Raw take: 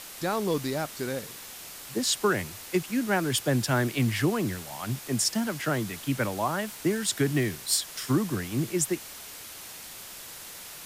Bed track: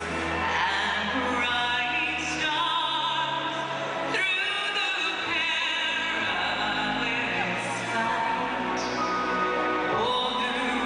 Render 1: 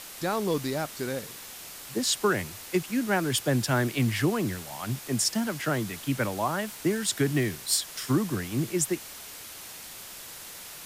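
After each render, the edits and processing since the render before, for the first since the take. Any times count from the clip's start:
no processing that can be heard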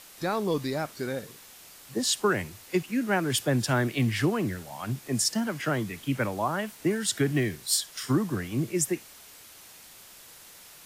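noise reduction from a noise print 7 dB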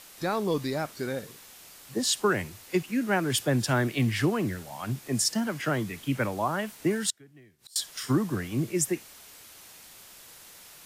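0:07.10–0:07.76: gate with flip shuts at −30 dBFS, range −28 dB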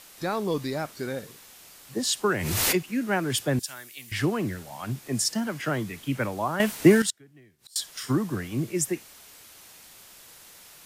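0:02.29–0:02.90: background raised ahead of every attack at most 25 dB per second
0:03.59–0:04.12: first-order pre-emphasis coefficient 0.97
0:06.60–0:07.02: clip gain +10.5 dB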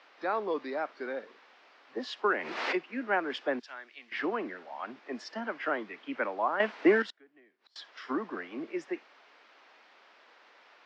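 elliptic band-pass filter 240–5,200 Hz, stop band 40 dB
three-way crossover with the lows and the highs turned down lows −13 dB, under 380 Hz, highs −20 dB, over 2,700 Hz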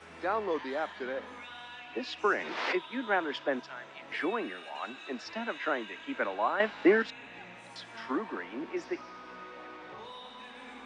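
mix in bed track −20.5 dB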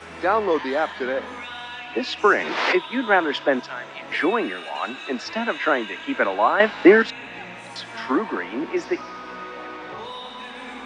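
level +11 dB

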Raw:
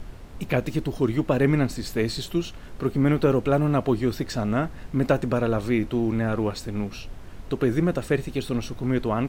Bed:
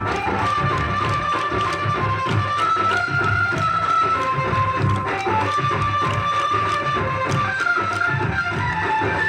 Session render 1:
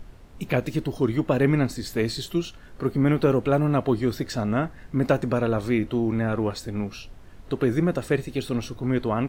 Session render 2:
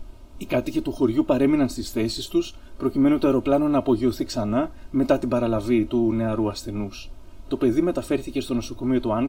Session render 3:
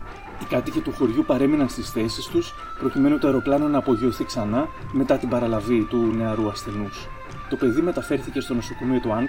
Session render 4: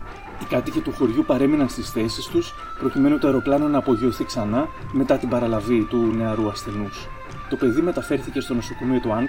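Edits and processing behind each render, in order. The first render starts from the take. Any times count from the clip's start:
noise reduction from a noise print 6 dB
parametric band 1,800 Hz −13 dB 0.38 octaves; comb filter 3.2 ms, depth 78%
mix in bed −17 dB
level +1 dB

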